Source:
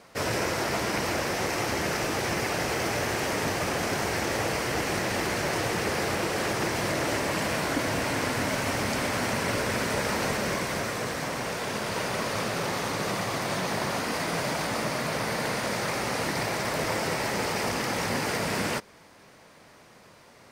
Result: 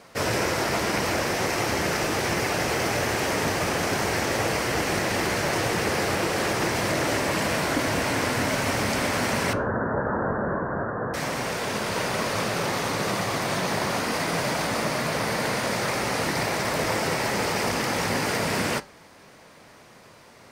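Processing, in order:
0:09.53–0:11.14: Butterworth low-pass 1,700 Hz 96 dB per octave
flanger 0.7 Hz, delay 7.1 ms, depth 6.3 ms, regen −82%
level +7.5 dB

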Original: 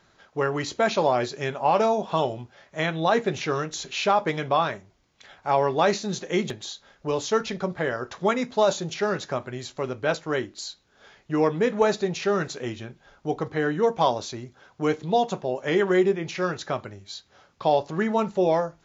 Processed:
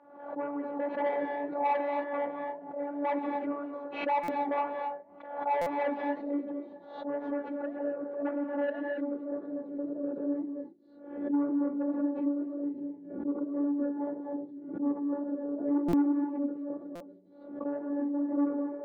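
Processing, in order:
low-pass filter sweep 750 Hz → 360 Hz, 0:06.72–0:10.52
phases set to zero 287 Hz
soft clipping −17 dBFS, distortion −12 dB
band-pass filter 220–2,300 Hz
reverb whose tail is shaped and stops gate 290 ms rising, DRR 4 dB
flanger 1.9 Hz, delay 3.2 ms, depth 5 ms, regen −77%
dynamic equaliser 610 Hz, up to −6 dB, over −39 dBFS, Q 3.2
buffer that repeats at 0:04.23/0:05.61/0:15.88/0:16.95, samples 256, times 8
background raised ahead of every attack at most 73 dB per second

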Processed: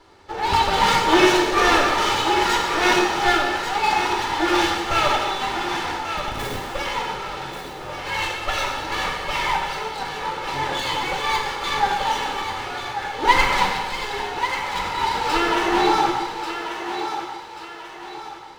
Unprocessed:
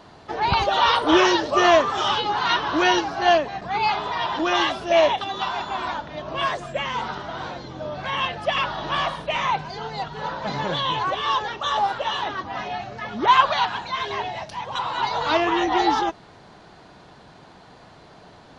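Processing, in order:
lower of the sound and its delayed copy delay 2.3 ms
in parallel at −4 dB: dead-zone distortion −36 dBFS
on the sum: flanger 0.47 Hz, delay 2.9 ms, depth 2.5 ms, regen −59%
0:06.16–0:06.62: comparator with hysteresis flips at −27 dBFS
feedback echo with a high-pass in the loop 1,138 ms, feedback 41%, high-pass 300 Hz, level −8 dB
dense smooth reverb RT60 1.6 s, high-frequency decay 0.9×, DRR 0 dB

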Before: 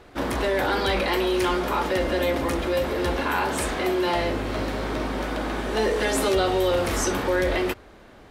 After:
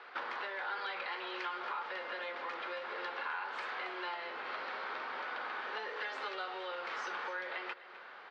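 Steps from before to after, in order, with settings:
three-way crossover with the lows and the highs turned down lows −23 dB, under 580 Hz, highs −20 dB, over 3,400 Hz
downward compressor 6 to 1, threshold −41 dBFS, peak gain reduction 17.5 dB
loudspeaker in its box 240–5,800 Hz, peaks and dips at 290 Hz −6 dB, 640 Hz −8 dB, 1,400 Hz +4 dB, 4,600 Hz +5 dB
single-tap delay 255 ms −16 dB
on a send at −22.5 dB: convolution reverb RT60 1.6 s, pre-delay 100 ms
on the sum: level +2.5 dB

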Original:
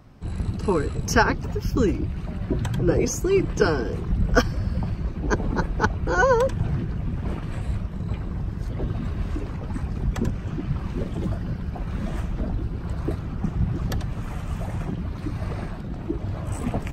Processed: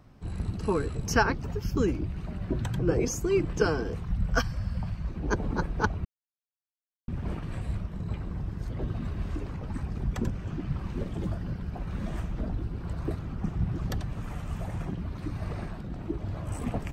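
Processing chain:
0:03.94–0:05.09: parametric band 360 Hz −12 dB 1 octave
0:06.05–0:07.08: silence
level −5 dB

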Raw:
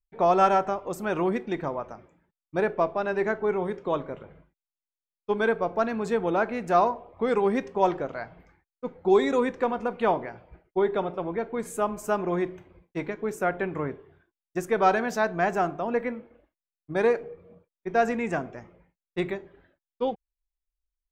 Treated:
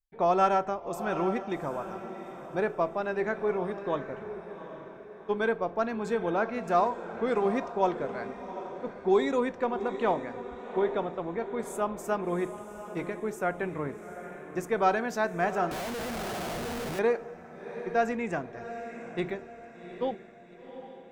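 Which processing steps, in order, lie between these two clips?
feedback delay with all-pass diffusion 767 ms, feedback 45%, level −11 dB
0:15.71–0:16.99: comparator with hysteresis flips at −42.5 dBFS
level −3.5 dB

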